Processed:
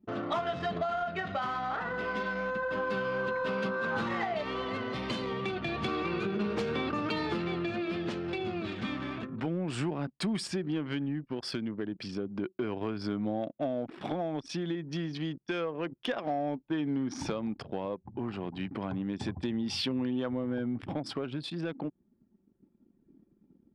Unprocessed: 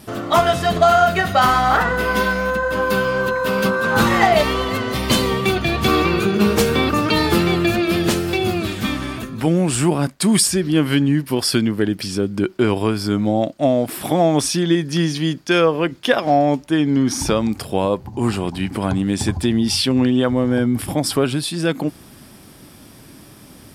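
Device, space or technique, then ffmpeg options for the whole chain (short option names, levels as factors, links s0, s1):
AM radio: -af "highpass=120,lowpass=3900,acompressor=threshold=0.1:ratio=6,asoftclip=type=tanh:threshold=0.224,tremolo=f=0.3:d=0.24,anlmdn=6.31,volume=0.422"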